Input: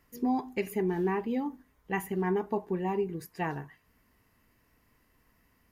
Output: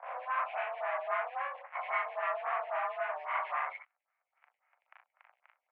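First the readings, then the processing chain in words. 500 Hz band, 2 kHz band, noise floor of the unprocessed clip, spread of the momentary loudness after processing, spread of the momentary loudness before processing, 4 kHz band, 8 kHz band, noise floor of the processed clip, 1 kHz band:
-6.0 dB, +4.0 dB, -69 dBFS, 5 LU, 6 LU, -1.5 dB, under -25 dB, under -85 dBFS, +3.0 dB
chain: spectral swells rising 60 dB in 0.40 s; in parallel at -3 dB: fuzz box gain 53 dB, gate -56 dBFS; on the sum: transient shaper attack +10 dB, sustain -8 dB; doubler 42 ms -2.5 dB; reverse; compressor 6:1, threshold -22 dBFS, peak gain reduction 12 dB; reverse; mistuned SSB +270 Hz 440–2200 Hz; early reflections 35 ms -9.5 dB, 60 ms -10.5 dB; photocell phaser 3.7 Hz; gain -5.5 dB

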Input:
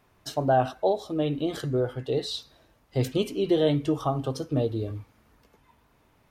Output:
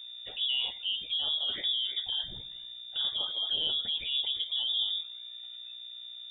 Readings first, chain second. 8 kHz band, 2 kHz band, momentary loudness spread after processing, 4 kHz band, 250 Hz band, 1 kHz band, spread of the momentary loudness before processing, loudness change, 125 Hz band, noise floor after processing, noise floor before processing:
under -35 dB, -3.0 dB, 14 LU, +12.5 dB, -31.0 dB, -23.0 dB, 10 LU, -2.5 dB, under -25 dB, -45 dBFS, -64 dBFS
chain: notches 60/120/180/240/300/360/420/480 Hz; hum 60 Hz, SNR 17 dB; in parallel at +2 dB: negative-ratio compressor -29 dBFS, ratio -0.5; on the sum: envelope flanger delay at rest 2.5 ms, full sweep at -17 dBFS; on a send: thin delay 79 ms, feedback 67%, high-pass 1900 Hz, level -17.5 dB; on the sum: inverted band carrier 3600 Hz; gain -9 dB

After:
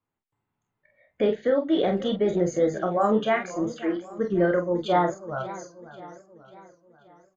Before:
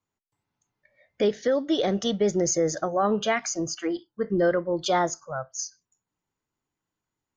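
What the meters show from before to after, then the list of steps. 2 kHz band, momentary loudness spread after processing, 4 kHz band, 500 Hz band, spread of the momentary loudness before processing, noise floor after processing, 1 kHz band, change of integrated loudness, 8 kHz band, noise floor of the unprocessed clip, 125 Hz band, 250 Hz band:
0.0 dB, 17 LU, -5.5 dB, +1.0 dB, 9 LU, -83 dBFS, +1.5 dB, +1.0 dB, -16.0 dB, under -85 dBFS, +1.5 dB, +2.0 dB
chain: running mean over 8 samples; early reflections 28 ms -7.5 dB, 46 ms -7 dB; warbling echo 0.538 s, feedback 50%, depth 185 cents, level -16 dB

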